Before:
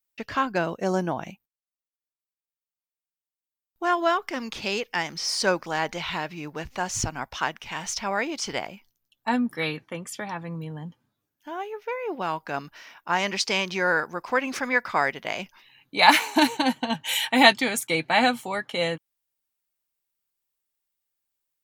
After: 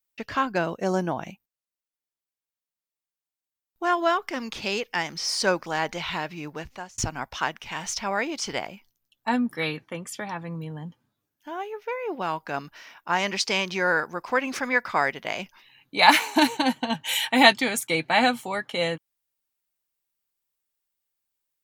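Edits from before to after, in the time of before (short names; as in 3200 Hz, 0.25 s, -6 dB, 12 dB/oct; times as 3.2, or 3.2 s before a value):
6.51–6.98 fade out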